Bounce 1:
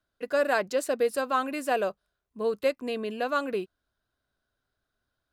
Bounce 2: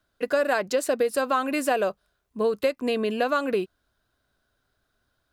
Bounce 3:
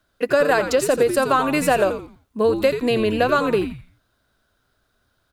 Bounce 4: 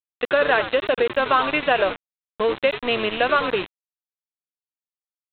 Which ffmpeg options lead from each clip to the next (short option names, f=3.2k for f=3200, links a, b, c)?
-af "acompressor=threshold=-28dB:ratio=5,volume=8dB"
-filter_complex "[0:a]asplit=5[a][b][c][d][e];[b]adelay=85,afreqshift=-120,volume=-9dB[f];[c]adelay=170,afreqshift=-240,volume=-18.9dB[g];[d]adelay=255,afreqshift=-360,volume=-28.8dB[h];[e]adelay=340,afreqshift=-480,volume=-38.7dB[i];[a][f][g][h][i]amix=inputs=5:normalize=0,volume=5.5dB"
-af "aemphasis=mode=production:type=riaa,aresample=8000,aeval=exprs='val(0)*gte(abs(val(0)),0.0596)':c=same,aresample=44100"